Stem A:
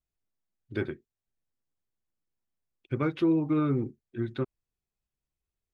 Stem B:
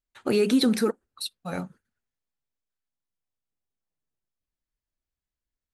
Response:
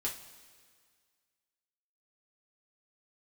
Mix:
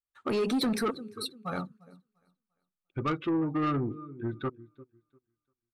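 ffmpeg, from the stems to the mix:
-filter_complex "[0:a]adelay=50,volume=-0.5dB,asplit=2[link_01][link_02];[link_02]volume=-18.5dB[link_03];[1:a]volume=-2.5dB,asplit=3[link_04][link_05][link_06];[link_05]volume=-18dB[link_07];[link_06]apad=whole_len=255067[link_08];[link_01][link_08]sidechaincompress=threshold=-42dB:ratio=8:attack=16:release=207[link_09];[link_03][link_07]amix=inputs=2:normalize=0,aecho=0:1:347|694|1041|1388|1735:1|0.33|0.109|0.0359|0.0119[link_10];[link_09][link_04][link_10]amix=inputs=3:normalize=0,afftdn=noise_reduction=13:noise_floor=-43,equalizer=frequency=1200:width=3.6:gain=11.5,asoftclip=type=tanh:threshold=-23.5dB"

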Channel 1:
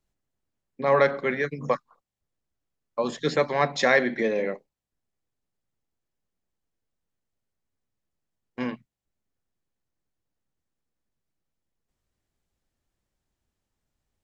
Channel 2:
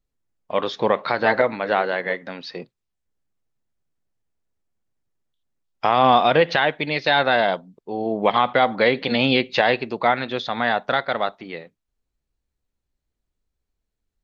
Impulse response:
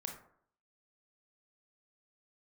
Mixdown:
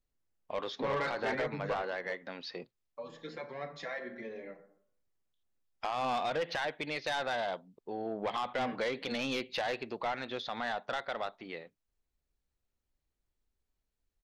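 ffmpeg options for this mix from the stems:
-filter_complex "[0:a]lowpass=4800,bandreject=frequency=77.18:width_type=h:width=4,bandreject=frequency=154.36:width_type=h:width=4,bandreject=frequency=231.54:width_type=h:width=4,bandreject=frequency=308.72:width_type=h:width=4,bandreject=frequency=385.9:width_type=h:width=4,bandreject=frequency=463.08:width_type=h:width=4,bandreject=frequency=540.26:width_type=h:width=4,bandreject=frequency=617.44:width_type=h:width=4,bandreject=frequency=694.62:width_type=h:width=4,bandreject=frequency=771.8:width_type=h:width=4,bandreject=frequency=848.98:width_type=h:width=4,bandreject=frequency=926.16:width_type=h:width=4,bandreject=frequency=1003.34:width_type=h:width=4,bandreject=frequency=1080.52:width_type=h:width=4,bandreject=frequency=1157.7:width_type=h:width=4,bandreject=frequency=1234.88:width_type=h:width=4,bandreject=frequency=1312.06:width_type=h:width=4,bandreject=frequency=1389.24:width_type=h:width=4,bandreject=frequency=1466.42:width_type=h:width=4,bandreject=frequency=1543.6:width_type=h:width=4,asplit=2[link_01][link_02];[link_02]adelay=5,afreqshift=1.4[link_03];[link_01][link_03]amix=inputs=2:normalize=1,volume=2dB,asplit=2[link_04][link_05];[link_05]volume=-17.5dB[link_06];[1:a]equalizer=frequency=160:width_type=o:width=1.4:gain=-4,volume=-4.5dB,asplit=2[link_07][link_08];[link_08]apad=whole_len=627764[link_09];[link_04][link_09]sidechaingate=range=-18dB:threshold=-42dB:ratio=16:detection=peak[link_10];[2:a]atrim=start_sample=2205[link_11];[link_06][link_11]afir=irnorm=-1:irlink=0[link_12];[link_10][link_07][link_12]amix=inputs=3:normalize=0,asoftclip=type=tanh:threshold=-19.5dB,acompressor=threshold=-45dB:ratio=1.5"

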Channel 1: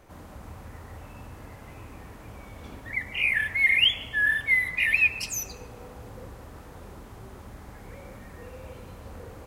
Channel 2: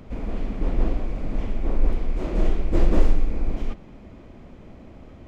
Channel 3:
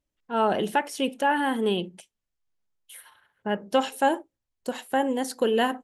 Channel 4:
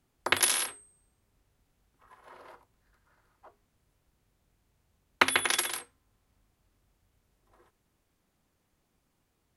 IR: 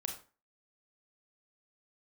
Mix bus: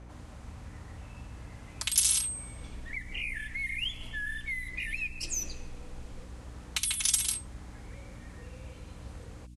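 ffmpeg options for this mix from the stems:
-filter_complex "[0:a]volume=-0.5dB[link_01];[1:a]adelay=2500,volume=-14dB[link_02];[3:a]highpass=frequency=600:width=0.5412,highpass=frequency=600:width=1.3066,aecho=1:1:4.6:0.85,aexciter=amount=2:drive=8.9:freq=2500,adelay=1550,volume=-2dB[link_03];[link_01][link_02][link_03]amix=inputs=3:normalize=0,lowpass=frequency=9600:width=0.5412,lowpass=frequency=9600:width=1.3066,acrossover=split=99|2000|5600[link_04][link_05][link_06][link_07];[link_04]acompressor=threshold=-41dB:ratio=4[link_08];[link_05]acompressor=threshold=-52dB:ratio=4[link_09];[link_06]acompressor=threshold=-38dB:ratio=4[link_10];[link_07]acompressor=threshold=-21dB:ratio=4[link_11];[link_08][link_09][link_10][link_11]amix=inputs=4:normalize=0,aeval=exprs='val(0)+0.00447*(sin(2*PI*60*n/s)+sin(2*PI*2*60*n/s)/2+sin(2*PI*3*60*n/s)/3+sin(2*PI*4*60*n/s)/4+sin(2*PI*5*60*n/s)/5)':channel_layout=same"

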